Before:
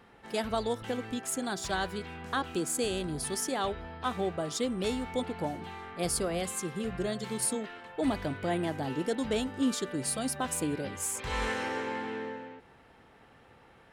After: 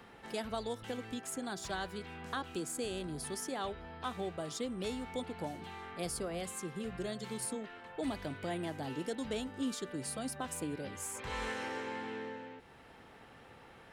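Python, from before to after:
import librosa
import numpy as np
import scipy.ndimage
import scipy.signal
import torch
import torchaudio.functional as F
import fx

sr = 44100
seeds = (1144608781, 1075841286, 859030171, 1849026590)

y = fx.band_squash(x, sr, depth_pct=40)
y = y * librosa.db_to_amplitude(-7.0)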